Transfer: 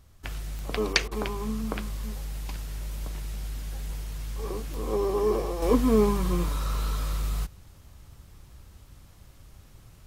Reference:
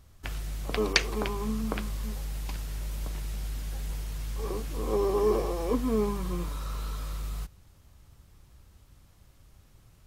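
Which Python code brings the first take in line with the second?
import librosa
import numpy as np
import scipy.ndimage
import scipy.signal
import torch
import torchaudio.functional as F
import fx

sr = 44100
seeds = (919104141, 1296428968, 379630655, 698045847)

y = fx.fix_declick_ar(x, sr, threshold=10.0)
y = fx.fix_interpolate(y, sr, at_s=(1.08,), length_ms=32.0)
y = fx.gain(y, sr, db=fx.steps((0.0, 0.0), (5.62, -6.0)))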